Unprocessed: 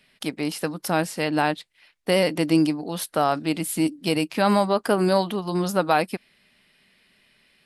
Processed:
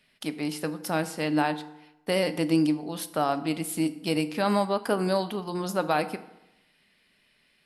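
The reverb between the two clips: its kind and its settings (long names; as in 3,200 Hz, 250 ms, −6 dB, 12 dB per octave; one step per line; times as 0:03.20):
feedback delay network reverb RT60 0.91 s, low-frequency decay 1×, high-frequency decay 0.65×, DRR 10.5 dB
level −5 dB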